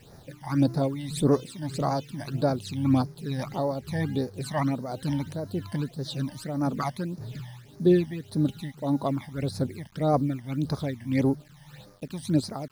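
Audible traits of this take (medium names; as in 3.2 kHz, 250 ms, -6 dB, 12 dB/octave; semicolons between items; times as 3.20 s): tremolo triangle 1.8 Hz, depth 75%; a quantiser's noise floor 10-bit, dither none; phasing stages 12, 1.7 Hz, lowest notch 410–3000 Hz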